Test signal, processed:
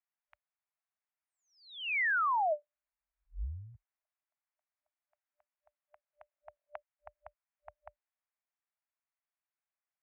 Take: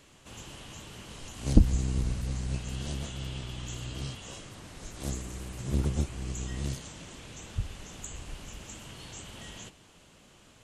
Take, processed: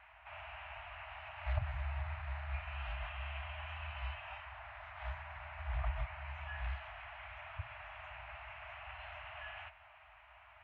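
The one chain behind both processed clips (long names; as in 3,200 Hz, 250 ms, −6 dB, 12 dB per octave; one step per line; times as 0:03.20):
brick-wall band-stop 160–790 Hz
single-sideband voice off tune −200 Hz 160–2,600 Hz
level +4.5 dB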